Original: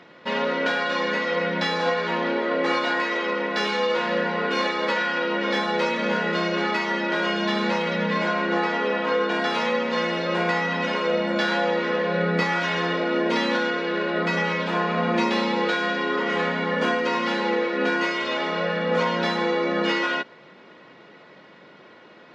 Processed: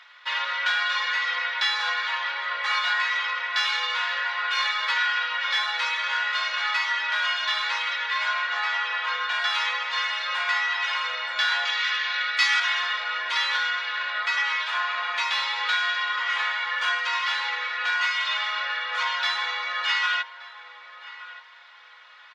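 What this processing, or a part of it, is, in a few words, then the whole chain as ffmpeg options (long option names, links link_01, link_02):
headphones lying on a table: -filter_complex "[0:a]asettb=1/sr,asplit=3[link_01][link_02][link_03];[link_01]atrim=end=11.654[link_04];[link_02]atrim=start=11.65:end=12.6,asetpts=PTS-STARTPTS,afade=type=in:duration=0.004:curve=qsin,afade=type=out:start_time=0.946:duration=0.004:curve=qsin,tiltshelf=frequency=1400:gain=-9[link_05];[link_03]atrim=start=12.596[link_06];[link_04][link_05]acrossfade=duration=0.004:curve1=hsin:curve2=qsin[link_07];[link_07][link_06]acrossfade=duration=0.004:curve1=qsin:curve2=hsin,highpass=frequency=1100:width=0.5412,highpass=frequency=1100:width=1.3066,equalizer=frequency=3500:width_type=o:width=0.24:gain=5,asplit=2[link_08][link_09];[link_09]adelay=1174,lowpass=frequency=1500:poles=1,volume=-13.5dB,asplit=2[link_10][link_11];[link_11]adelay=1174,lowpass=frequency=1500:poles=1,volume=0.35,asplit=2[link_12][link_13];[link_13]adelay=1174,lowpass=frequency=1500:poles=1,volume=0.35[link_14];[link_08][link_10][link_12][link_14]amix=inputs=4:normalize=0,volume=2dB"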